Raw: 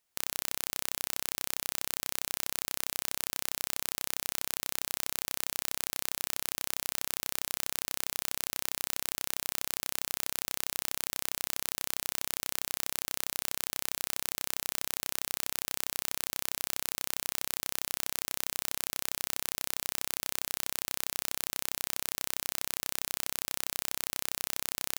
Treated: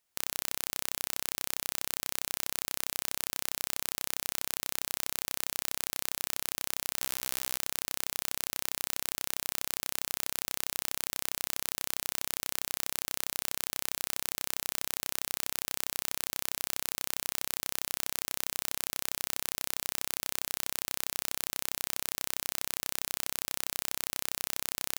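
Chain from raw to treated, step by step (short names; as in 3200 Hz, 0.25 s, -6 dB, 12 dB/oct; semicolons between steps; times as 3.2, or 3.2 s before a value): 7–7.57 doubler 16 ms -10 dB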